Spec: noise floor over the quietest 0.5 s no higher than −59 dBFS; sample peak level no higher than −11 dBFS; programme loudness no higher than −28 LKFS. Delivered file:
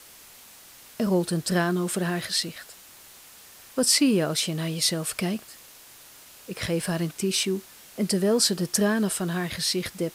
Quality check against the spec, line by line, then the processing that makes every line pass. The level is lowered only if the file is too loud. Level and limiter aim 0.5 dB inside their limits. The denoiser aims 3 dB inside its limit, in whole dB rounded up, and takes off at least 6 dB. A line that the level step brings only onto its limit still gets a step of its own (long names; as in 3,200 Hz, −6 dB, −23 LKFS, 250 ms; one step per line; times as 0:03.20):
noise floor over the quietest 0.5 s −49 dBFS: out of spec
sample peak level −8.0 dBFS: out of spec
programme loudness −25.0 LKFS: out of spec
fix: broadband denoise 10 dB, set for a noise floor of −49 dBFS
level −3.5 dB